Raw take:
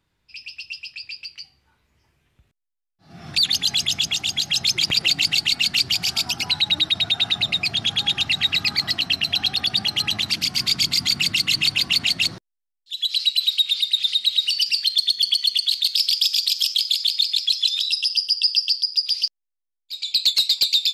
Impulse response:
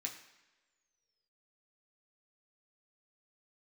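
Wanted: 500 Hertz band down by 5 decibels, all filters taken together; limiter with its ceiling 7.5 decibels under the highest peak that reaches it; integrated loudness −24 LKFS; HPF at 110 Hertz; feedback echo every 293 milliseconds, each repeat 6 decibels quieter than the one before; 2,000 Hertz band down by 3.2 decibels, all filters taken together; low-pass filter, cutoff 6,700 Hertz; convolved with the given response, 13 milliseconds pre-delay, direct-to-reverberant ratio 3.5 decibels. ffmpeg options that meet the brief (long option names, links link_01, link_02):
-filter_complex "[0:a]highpass=110,lowpass=6700,equalizer=frequency=500:width_type=o:gain=-7.5,equalizer=frequency=2000:width_type=o:gain=-4.5,alimiter=limit=-16dB:level=0:latency=1,aecho=1:1:293|586|879|1172|1465|1758:0.501|0.251|0.125|0.0626|0.0313|0.0157,asplit=2[link_01][link_02];[1:a]atrim=start_sample=2205,adelay=13[link_03];[link_02][link_03]afir=irnorm=-1:irlink=0,volume=-2dB[link_04];[link_01][link_04]amix=inputs=2:normalize=0,volume=-2.5dB"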